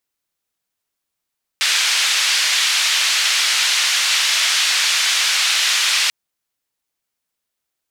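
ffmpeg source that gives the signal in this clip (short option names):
-f lavfi -i "anoisesrc=c=white:d=4.49:r=44100:seed=1,highpass=f=1900,lowpass=f=4700,volume=-3.6dB"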